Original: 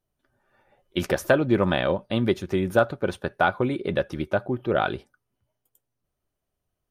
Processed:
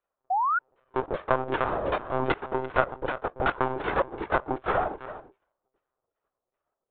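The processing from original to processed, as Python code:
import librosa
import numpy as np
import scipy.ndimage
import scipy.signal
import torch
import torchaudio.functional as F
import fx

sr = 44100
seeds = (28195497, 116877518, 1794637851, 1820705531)

p1 = fx.envelope_flatten(x, sr, power=0.1)
p2 = fx.filter_lfo_lowpass(p1, sr, shape='saw_down', hz=2.6, low_hz=460.0, high_hz=2400.0, q=1.0)
p3 = p2 + fx.echo_single(p2, sr, ms=334, db=-14.5, dry=0)
p4 = fx.lpc_monotone(p3, sr, seeds[0], pitch_hz=130.0, order=16)
p5 = fx.band_shelf(p4, sr, hz=690.0, db=9.0, octaves=2.5)
p6 = fx.spec_paint(p5, sr, seeds[1], shape='rise', start_s=0.3, length_s=0.29, low_hz=710.0, high_hz=1500.0, level_db=-16.0)
p7 = fx.rider(p6, sr, range_db=4, speed_s=0.5)
y = p7 * librosa.db_to_amplitude(-5.0)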